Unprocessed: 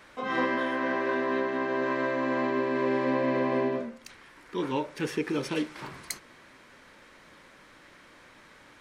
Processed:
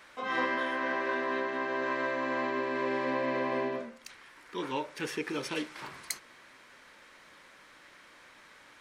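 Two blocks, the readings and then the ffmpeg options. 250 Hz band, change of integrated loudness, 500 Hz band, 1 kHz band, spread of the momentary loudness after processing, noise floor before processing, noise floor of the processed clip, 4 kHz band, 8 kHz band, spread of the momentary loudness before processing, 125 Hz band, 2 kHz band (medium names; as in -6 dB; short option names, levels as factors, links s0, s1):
-7.0 dB, -3.5 dB, -4.5 dB, -2.0 dB, 10 LU, -55 dBFS, -57 dBFS, 0.0 dB, 0.0 dB, 12 LU, -8.5 dB, -0.5 dB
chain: -af "lowshelf=f=470:g=-9.5"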